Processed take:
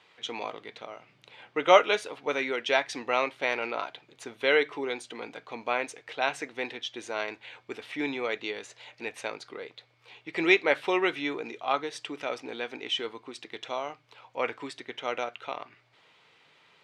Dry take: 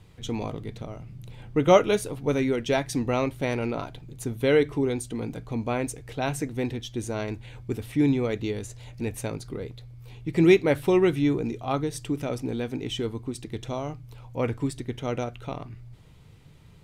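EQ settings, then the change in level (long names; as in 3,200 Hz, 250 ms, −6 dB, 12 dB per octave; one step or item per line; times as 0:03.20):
band-pass filter 490–3,300 Hz
tilt shelving filter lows −5.5 dB, about 910 Hz
+2.5 dB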